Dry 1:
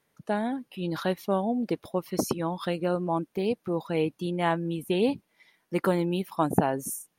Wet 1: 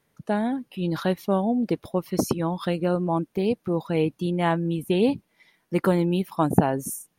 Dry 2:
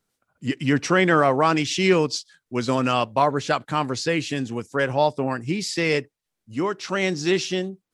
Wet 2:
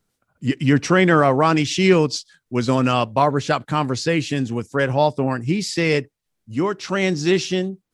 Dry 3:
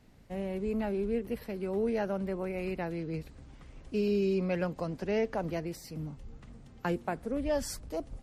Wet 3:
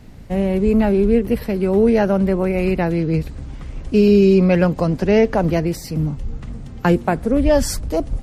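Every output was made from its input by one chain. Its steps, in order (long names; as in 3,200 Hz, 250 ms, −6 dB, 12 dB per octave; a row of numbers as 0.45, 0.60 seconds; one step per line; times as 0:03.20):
low-shelf EQ 220 Hz +7 dB
normalise the peak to −3 dBFS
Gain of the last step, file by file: +1.5, +1.5, +14.0 decibels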